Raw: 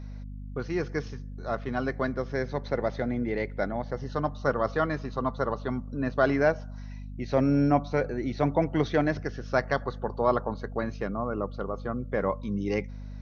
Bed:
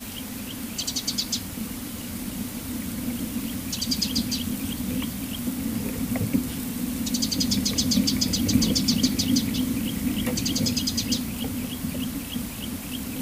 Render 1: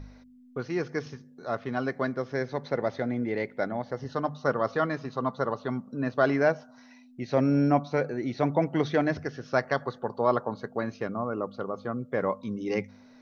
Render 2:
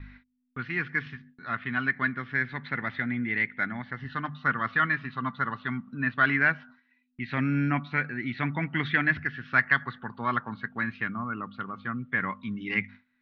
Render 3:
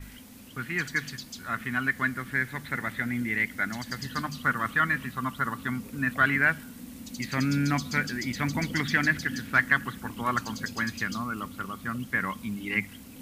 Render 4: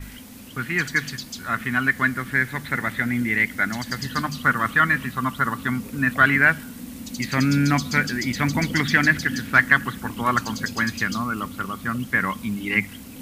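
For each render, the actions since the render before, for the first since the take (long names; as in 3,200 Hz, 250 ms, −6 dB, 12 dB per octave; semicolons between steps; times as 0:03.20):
hum removal 50 Hz, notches 4
noise gate with hold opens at −41 dBFS; drawn EQ curve 240 Hz 0 dB, 530 Hz −19 dB, 1,800 Hz +13 dB, 3,500 Hz +5 dB, 6,100 Hz −22 dB
mix in bed −14.5 dB
level +6.5 dB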